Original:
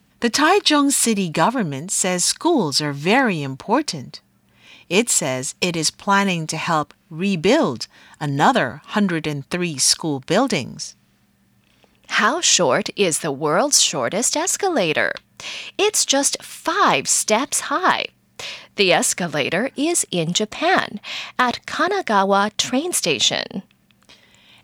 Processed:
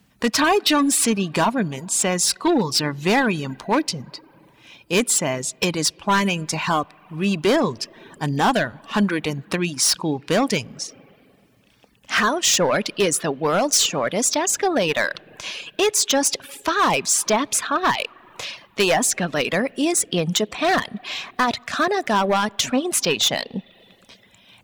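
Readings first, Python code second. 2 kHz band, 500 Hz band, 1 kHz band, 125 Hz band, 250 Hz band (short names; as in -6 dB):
-2.0 dB, -1.5 dB, -2.5 dB, -1.5 dB, -1.5 dB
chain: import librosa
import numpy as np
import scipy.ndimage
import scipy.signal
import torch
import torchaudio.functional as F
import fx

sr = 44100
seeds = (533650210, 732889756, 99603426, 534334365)

y = np.clip(x, -10.0 ** (-13.0 / 20.0), 10.0 ** (-13.0 / 20.0))
y = fx.rev_spring(y, sr, rt60_s=2.4, pass_ms=(38, 45, 57), chirp_ms=50, drr_db=16.5)
y = fx.dereverb_blind(y, sr, rt60_s=0.6)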